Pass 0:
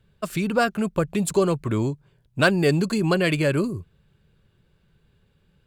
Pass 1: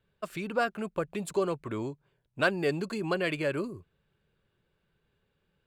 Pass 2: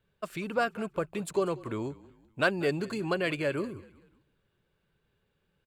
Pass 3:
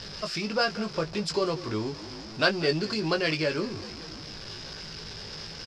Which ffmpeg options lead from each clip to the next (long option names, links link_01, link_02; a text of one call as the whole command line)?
ffmpeg -i in.wav -af "bass=frequency=250:gain=-9,treble=frequency=4000:gain=-7,volume=-6.5dB" out.wav
ffmpeg -i in.wav -filter_complex "[0:a]asplit=4[link_01][link_02][link_03][link_04];[link_02]adelay=190,afreqshift=-33,volume=-20dB[link_05];[link_03]adelay=380,afreqshift=-66,volume=-28dB[link_06];[link_04]adelay=570,afreqshift=-99,volume=-35.9dB[link_07];[link_01][link_05][link_06][link_07]amix=inputs=4:normalize=0" out.wav
ffmpeg -i in.wav -filter_complex "[0:a]aeval=exprs='val(0)+0.5*0.0119*sgn(val(0))':channel_layout=same,lowpass=frequency=5100:width_type=q:width=12,asplit=2[link_01][link_02];[link_02]adelay=19,volume=-6dB[link_03];[link_01][link_03]amix=inputs=2:normalize=0" out.wav